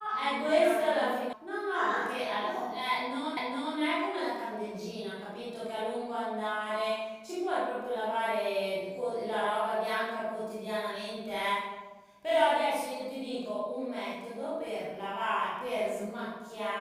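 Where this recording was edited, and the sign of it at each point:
1.33 s: sound stops dead
3.37 s: repeat of the last 0.41 s

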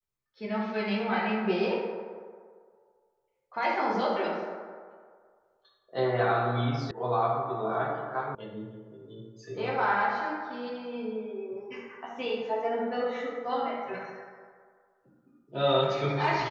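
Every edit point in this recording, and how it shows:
6.91 s: sound stops dead
8.35 s: sound stops dead

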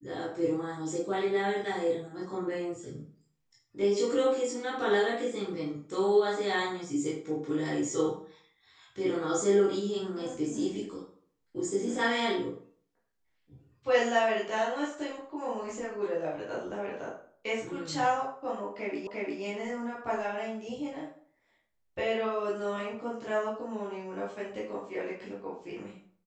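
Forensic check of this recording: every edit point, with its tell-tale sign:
19.07 s: repeat of the last 0.35 s

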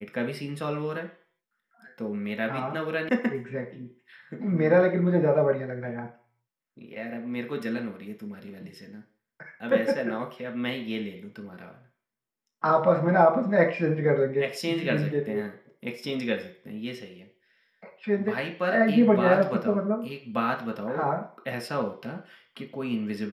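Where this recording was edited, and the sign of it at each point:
3.09 s: sound stops dead

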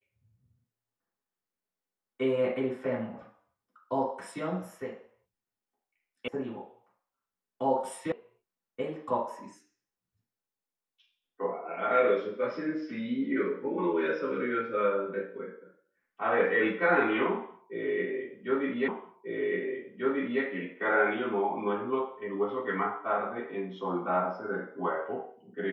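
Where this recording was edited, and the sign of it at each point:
6.28 s: sound stops dead
8.12 s: sound stops dead
18.88 s: repeat of the last 1.54 s

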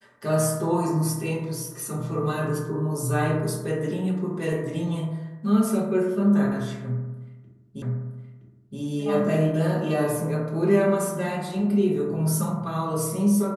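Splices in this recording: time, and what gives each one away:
7.82 s: repeat of the last 0.97 s

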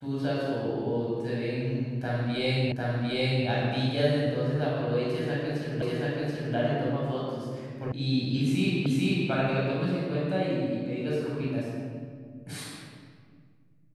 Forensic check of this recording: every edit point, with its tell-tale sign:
2.72 s: repeat of the last 0.75 s
5.82 s: repeat of the last 0.73 s
7.92 s: sound stops dead
8.86 s: repeat of the last 0.44 s

